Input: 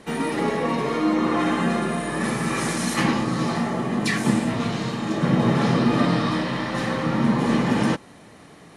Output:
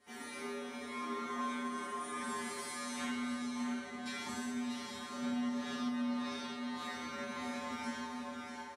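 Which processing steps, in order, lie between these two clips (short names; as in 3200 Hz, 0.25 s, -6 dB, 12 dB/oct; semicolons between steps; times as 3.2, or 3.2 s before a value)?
echo 0.644 s -9 dB; tremolo triangle 1 Hz, depth 30%; 2.69–4.29 high shelf 9300 Hz -12 dB; resonator 81 Hz, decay 1.1 s, harmonics odd, mix 100%; compressor 5:1, threshold -35 dBFS, peak gain reduction 8 dB; notches 60/120/180/240 Hz; on a send: tape echo 0.621 s, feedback 67%, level -7 dB, low-pass 2500 Hz; on the sum: flange 0.44 Hz, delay 9.6 ms, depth 2.2 ms, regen -46%; tilt +1.5 dB/oct; gain +7.5 dB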